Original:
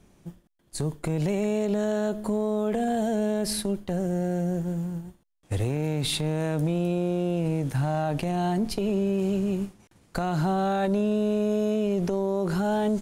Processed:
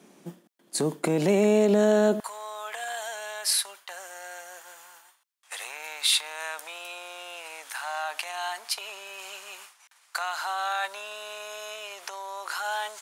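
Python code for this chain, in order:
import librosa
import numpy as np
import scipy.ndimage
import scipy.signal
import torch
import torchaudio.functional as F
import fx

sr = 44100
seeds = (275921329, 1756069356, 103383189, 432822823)

y = fx.highpass(x, sr, hz=fx.steps((0.0, 210.0), (2.2, 1000.0)), slope=24)
y = y * 10.0 ** (6.5 / 20.0)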